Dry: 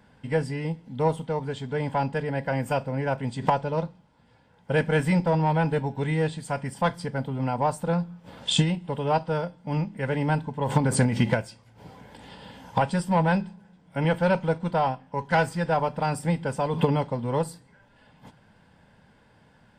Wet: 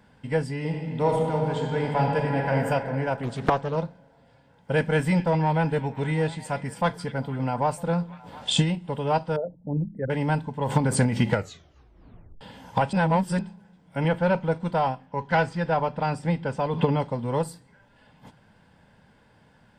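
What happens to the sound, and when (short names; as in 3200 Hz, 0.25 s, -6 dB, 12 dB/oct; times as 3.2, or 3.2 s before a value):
0.56–2.55 reverb throw, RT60 2.9 s, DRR -0.5 dB
3.23–3.76 Doppler distortion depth 0.88 ms
4.93–8.59 delay with a stepping band-pass 0.238 s, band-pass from 2700 Hz, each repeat -0.7 oct, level -12 dB
9.36–10.1 formant sharpening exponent 3
11.29 tape stop 1.12 s
12.93–13.39 reverse
14.08–14.52 LPF 3200 Hz 6 dB/oct
15.06–17 LPF 5100 Hz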